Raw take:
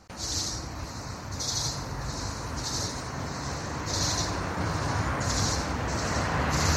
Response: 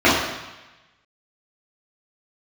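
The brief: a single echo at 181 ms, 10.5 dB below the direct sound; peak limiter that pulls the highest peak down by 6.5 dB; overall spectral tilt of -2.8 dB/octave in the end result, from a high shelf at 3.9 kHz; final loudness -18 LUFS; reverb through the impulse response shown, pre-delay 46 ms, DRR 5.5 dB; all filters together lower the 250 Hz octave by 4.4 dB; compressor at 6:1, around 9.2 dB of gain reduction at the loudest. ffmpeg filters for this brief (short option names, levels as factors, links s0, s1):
-filter_complex "[0:a]equalizer=f=250:t=o:g=-6.5,highshelf=f=3900:g=6,acompressor=threshold=0.0282:ratio=6,alimiter=level_in=1.41:limit=0.0631:level=0:latency=1,volume=0.708,aecho=1:1:181:0.299,asplit=2[s0][s1];[1:a]atrim=start_sample=2205,adelay=46[s2];[s1][s2]afir=irnorm=-1:irlink=0,volume=0.0251[s3];[s0][s3]amix=inputs=2:normalize=0,volume=7.08"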